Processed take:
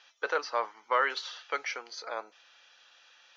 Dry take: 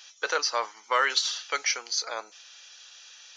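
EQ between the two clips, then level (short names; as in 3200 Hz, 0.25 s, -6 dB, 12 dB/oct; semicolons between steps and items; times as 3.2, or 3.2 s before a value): LPF 4000 Hz 6 dB/oct; air absorption 110 m; high shelf 2500 Hz -7.5 dB; 0.0 dB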